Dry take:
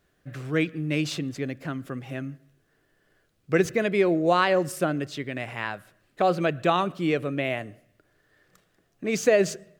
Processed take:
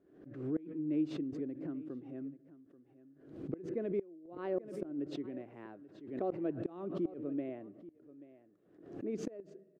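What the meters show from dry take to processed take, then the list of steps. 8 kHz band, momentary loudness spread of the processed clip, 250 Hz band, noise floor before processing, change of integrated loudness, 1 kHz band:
under -25 dB, 16 LU, -9.0 dB, -69 dBFS, -14.0 dB, -23.5 dB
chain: band-pass 320 Hz, Q 3.2; flipped gate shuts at -21 dBFS, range -25 dB; on a send: echo 0.834 s -17.5 dB; on the sum: backwards sustainer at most 79 dB/s; gain -3.5 dB

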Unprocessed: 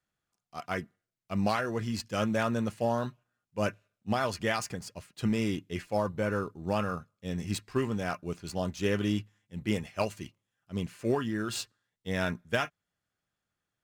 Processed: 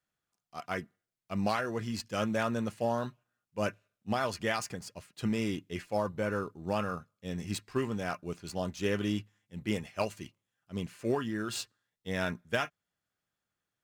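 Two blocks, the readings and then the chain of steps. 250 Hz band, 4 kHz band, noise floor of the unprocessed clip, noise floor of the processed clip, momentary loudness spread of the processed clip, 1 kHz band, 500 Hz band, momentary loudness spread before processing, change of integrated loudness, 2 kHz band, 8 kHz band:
-2.5 dB, -1.5 dB, under -85 dBFS, under -85 dBFS, 11 LU, -1.5 dB, -2.0 dB, 10 LU, -2.0 dB, -1.5 dB, -1.5 dB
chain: low shelf 130 Hz -4 dB; gain -1.5 dB

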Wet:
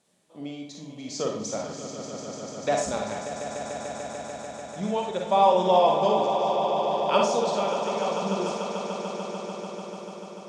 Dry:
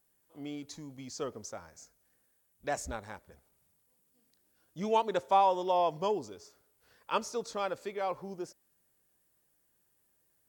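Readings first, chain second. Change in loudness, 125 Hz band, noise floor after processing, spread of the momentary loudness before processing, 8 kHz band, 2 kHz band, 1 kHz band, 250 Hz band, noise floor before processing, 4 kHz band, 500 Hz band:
+7.0 dB, +11.0 dB, -43 dBFS, 19 LU, +10.0 dB, +7.5 dB, +7.5 dB, +10.0 dB, -74 dBFS, +11.0 dB, +10.5 dB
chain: notch 2100 Hz, Q 17; in parallel at -2 dB: compressor, threshold -42 dBFS, peak gain reduction 20 dB; on the sum: tremolo 0.7 Hz, depth 67%; speaker cabinet 120–8700 Hz, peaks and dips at 200 Hz +9 dB, 600 Hz +6 dB, 1600 Hz -5 dB, 2200 Hz +4 dB, 3700 Hz +6 dB; on a send: swelling echo 0.147 s, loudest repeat 5, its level -11 dB; on the sum: Schroeder reverb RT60 0.4 s, DRR 1.5 dB; gain +4 dB

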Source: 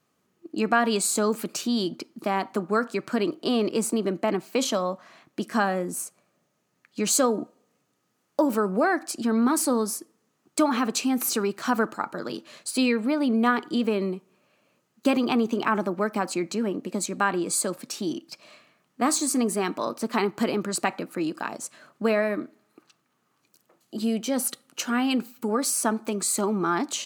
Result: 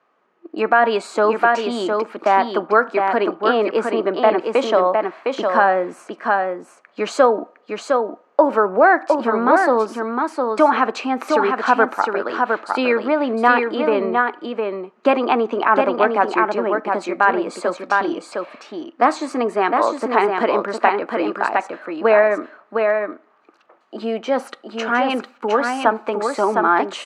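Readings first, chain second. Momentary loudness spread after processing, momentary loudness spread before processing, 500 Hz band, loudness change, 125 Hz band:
10 LU, 10 LU, +10.5 dB, +7.0 dB, n/a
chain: HPF 580 Hz 12 dB/oct; echo 0.709 s -4.5 dB; dynamic EQ 1200 Hz, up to -5 dB, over -43 dBFS, Q 7.9; LPF 1600 Hz 12 dB/oct; maximiser +15 dB; gain -1 dB

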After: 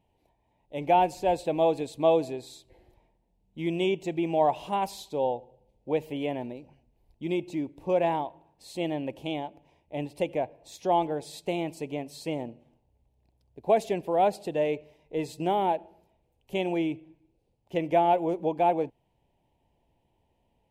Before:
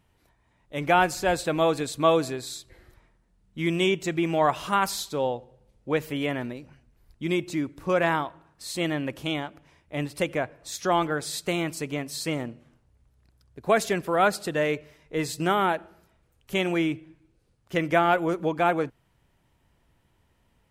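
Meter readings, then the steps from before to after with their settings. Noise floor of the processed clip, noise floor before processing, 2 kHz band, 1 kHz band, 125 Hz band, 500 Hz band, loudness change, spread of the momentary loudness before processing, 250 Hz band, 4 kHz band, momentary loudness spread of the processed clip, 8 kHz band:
-73 dBFS, -67 dBFS, -12.0 dB, -1.0 dB, -5.5 dB, -0.5 dB, -2.0 dB, 13 LU, -3.0 dB, -8.0 dB, 13 LU, -12.5 dB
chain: EQ curve 130 Hz 0 dB, 880 Hz +8 dB, 1300 Hz -17 dB, 2600 Hz +1 dB, 5300 Hz -6 dB; gain -6.5 dB

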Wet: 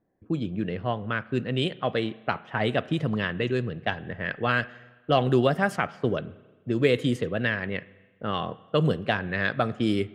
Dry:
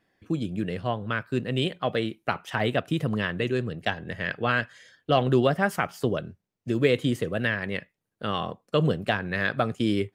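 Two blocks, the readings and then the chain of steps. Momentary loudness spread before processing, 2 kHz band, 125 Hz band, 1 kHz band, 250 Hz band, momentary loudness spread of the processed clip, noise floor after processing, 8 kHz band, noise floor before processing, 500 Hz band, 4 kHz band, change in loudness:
9 LU, 0.0 dB, 0.0 dB, 0.0 dB, 0.0 dB, 9 LU, -60 dBFS, n/a, -83 dBFS, 0.0 dB, -0.5 dB, 0.0 dB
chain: low-pass opened by the level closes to 720 Hz, open at -19 dBFS; spring tank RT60 1.3 s, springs 32/41 ms, chirp 35 ms, DRR 18.5 dB

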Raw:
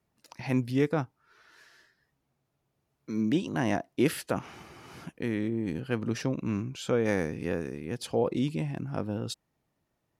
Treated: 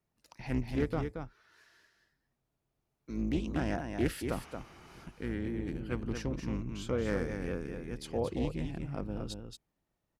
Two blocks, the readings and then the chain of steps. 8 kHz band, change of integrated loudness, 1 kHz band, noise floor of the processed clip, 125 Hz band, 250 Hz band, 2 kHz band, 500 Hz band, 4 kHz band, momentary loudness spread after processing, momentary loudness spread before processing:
-6.5 dB, -5.5 dB, -5.5 dB, -84 dBFS, -4.0 dB, -5.5 dB, -5.5 dB, -5.5 dB, -6.0 dB, 13 LU, 12 LU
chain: octaver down 2 oct, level -3 dB; echo 0.227 s -6.5 dB; Doppler distortion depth 0.21 ms; gain -6.5 dB

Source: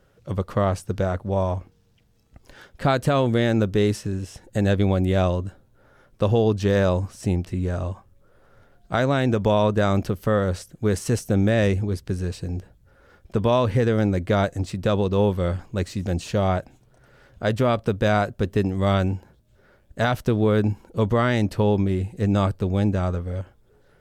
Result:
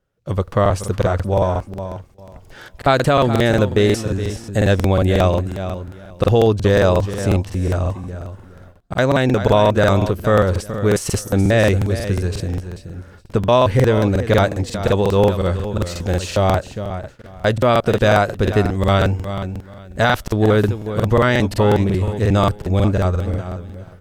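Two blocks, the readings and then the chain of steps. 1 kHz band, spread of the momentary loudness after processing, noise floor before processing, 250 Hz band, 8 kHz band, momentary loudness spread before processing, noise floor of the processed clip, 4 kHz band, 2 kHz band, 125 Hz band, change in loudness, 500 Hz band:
+7.0 dB, 13 LU, -59 dBFS, +3.5 dB, +8.0 dB, 9 LU, -43 dBFS, +7.5 dB, +7.5 dB, +5.5 dB, +5.5 dB, +6.5 dB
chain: low shelf 99 Hz +2 dB; feedback echo 0.426 s, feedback 21%, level -12 dB; dynamic EQ 180 Hz, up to -5 dB, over -31 dBFS, Q 0.81; gate with hold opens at -39 dBFS; crackling interface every 0.18 s, samples 2048, repeat, from 0.43; gain +7 dB

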